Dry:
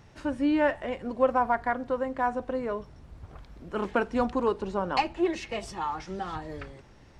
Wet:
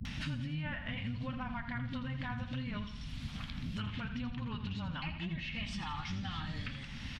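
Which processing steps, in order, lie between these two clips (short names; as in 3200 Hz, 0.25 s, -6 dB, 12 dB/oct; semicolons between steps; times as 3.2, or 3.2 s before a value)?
octaver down 1 oct, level +1 dB; treble ducked by the level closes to 1900 Hz, closed at -22.5 dBFS; EQ curve 250 Hz 0 dB, 360 Hz -24 dB, 3200 Hz +5 dB, 7600 Hz -14 dB; in parallel at -1 dB: negative-ratio compressor -38 dBFS; on the sum: pre-emphasis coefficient 0.8; limiter -36.5 dBFS, peak gain reduction 11 dB; flange 0.71 Hz, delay 3.5 ms, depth 9.8 ms, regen -55%; dispersion highs, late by 52 ms, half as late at 350 Hz; on a send: feedback echo 82 ms, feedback 39%, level -11 dB; on the sum: three-band squash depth 100%; gain +9 dB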